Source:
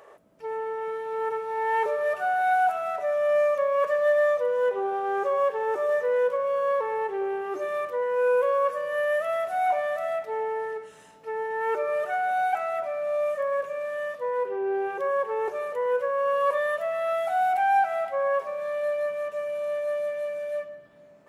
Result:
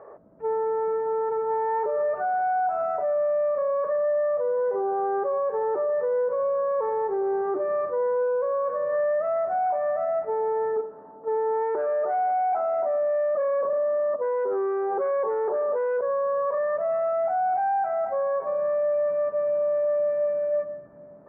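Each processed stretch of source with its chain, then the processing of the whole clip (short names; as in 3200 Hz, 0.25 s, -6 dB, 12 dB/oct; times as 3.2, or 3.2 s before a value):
10.76–16.01 gate -38 dBFS, range -10 dB + band shelf 530 Hz +12.5 dB 3 oct + core saturation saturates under 1400 Hz
whole clip: Bessel low-pass 940 Hz, order 6; limiter -27 dBFS; gain +7.5 dB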